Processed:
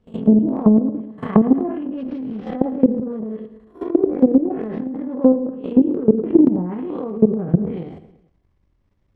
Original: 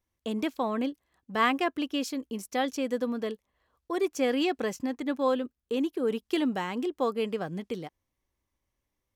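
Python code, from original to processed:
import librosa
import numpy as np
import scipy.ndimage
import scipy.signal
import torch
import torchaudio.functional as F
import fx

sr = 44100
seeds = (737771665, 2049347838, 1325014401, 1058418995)

p1 = fx.spec_blur(x, sr, span_ms=199.0)
p2 = fx.rider(p1, sr, range_db=4, speed_s=2.0)
p3 = p1 + (p2 * 10.0 ** (-1.0 / 20.0))
p4 = fx.doubler(p3, sr, ms=23.0, db=-5.5)
p5 = np.repeat(p4[::4], 4)[:len(p4)]
p6 = fx.riaa(p5, sr, side='playback')
p7 = fx.transient(p6, sr, attack_db=11, sustain_db=-4)
p8 = fx.env_lowpass_down(p7, sr, base_hz=580.0, full_db=-14.5)
p9 = fx.level_steps(p8, sr, step_db=16)
p10 = fx.env_lowpass_down(p9, sr, base_hz=660.0, full_db=-20.0)
p11 = p10 + fx.echo_feedback(p10, sr, ms=111, feedback_pct=53, wet_db=-19, dry=0)
p12 = fx.transient(p11, sr, attack_db=4, sustain_db=8)
p13 = fx.low_shelf(p12, sr, hz=70.0, db=-9.5)
y = p13 * 10.0 ** (5.0 / 20.0)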